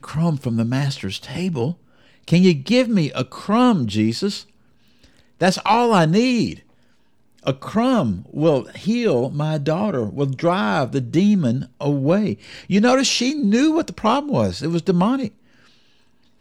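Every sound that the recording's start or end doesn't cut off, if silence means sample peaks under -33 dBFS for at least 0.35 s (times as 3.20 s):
2.28–4.42 s
5.41–6.57 s
7.46–15.28 s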